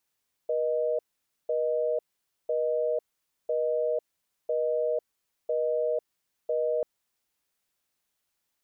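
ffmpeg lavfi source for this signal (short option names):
-f lavfi -i "aevalsrc='0.0447*(sin(2*PI*480*t)+sin(2*PI*620*t))*clip(min(mod(t,1),0.5-mod(t,1))/0.005,0,1)':d=6.34:s=44100"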